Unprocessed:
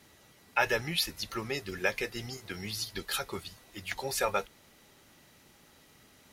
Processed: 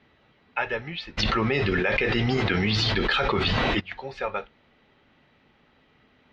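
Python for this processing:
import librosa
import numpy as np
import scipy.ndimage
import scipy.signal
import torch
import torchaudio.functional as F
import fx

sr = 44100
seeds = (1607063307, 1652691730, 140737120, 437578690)

y = scipy.signal.sosfilt(scipy.signal.butter(4, 3300.0, 'lowpass', fs=sr, output='sos'), x)
y = fx.rev_gated(y, sr, seeds[0], gate_ms=90, shape='falling', drr_db=12.0)
y = fx.env_flatten(y, sr, amount_pct=100, at=(1.17, 3.79), fade=0.02)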